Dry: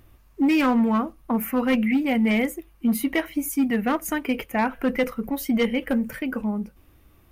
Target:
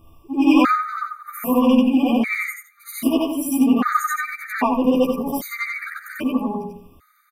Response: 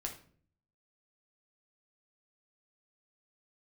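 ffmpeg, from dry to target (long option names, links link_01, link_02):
-filter_complex "[0:a]afftfilt=real='re':imag='-im':win_size=8192:overlap=0.75,equalizer=frequency=1200:width=7:gain=14,acontrast=35,asplit=2[link_01][link_02];[link_02]adelay=12,volume=-3dB[link_03];[link_01][link_03]amix=inputs=2:normalize=0,asplit=2[link_04][link_05];[link_05]adelay=100,lowpass=frequency=930:poles=1,volume=-7.5dB,asplit=2[link_06][link_07];[link_07]adelay=100,lowpass=frequency=930:poles=1,volume=0.3,asplit=2[link_08][link_09];[link_09]adelay=100,lowpass=frequency=930:poles=1,volume=0.3,asplit=2[link_10][link_11];[link_11]adelay=100,lowpass=frequency=930:poles=1,volume=0.3[link_12];[link_06][link_08][link_10][link_12]amix=inputs=4:normalize=0[link_13];[link_04][link_13]amix=inputs=2:normalize=0,afftfilt=real='re*gt(sin(2*PI*0.63*pts/sr)*(1-2*mod(floor(b*sr/1024/1200),2)),0)':imag='im*gt(sin(2*PI*0.63*pts/sr)*(1-2*mod(floor(b*sr/1024/1200),2)),0)':win_size=1024:overlap=0.75,volume=2.5dB"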